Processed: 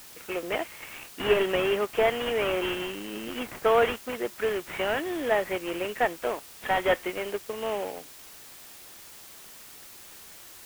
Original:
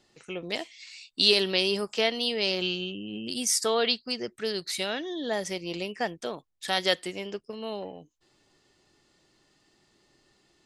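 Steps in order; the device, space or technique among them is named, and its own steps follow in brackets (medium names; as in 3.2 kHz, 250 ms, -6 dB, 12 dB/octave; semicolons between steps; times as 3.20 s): army field radio (band-pass 380–2900 Hz; CVSD coder 16 kbps; white noise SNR 18 dB); trim +7 dB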